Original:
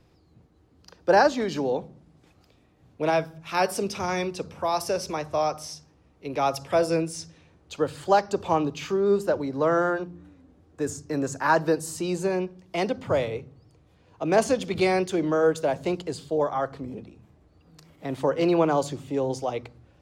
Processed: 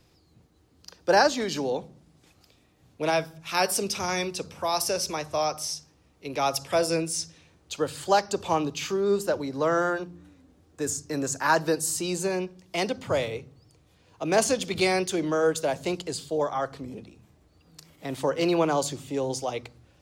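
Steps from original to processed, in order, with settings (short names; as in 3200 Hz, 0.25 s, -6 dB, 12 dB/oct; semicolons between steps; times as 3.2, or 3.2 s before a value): high shelf 2900 Hz +11.5 dB; gain -2.5 dB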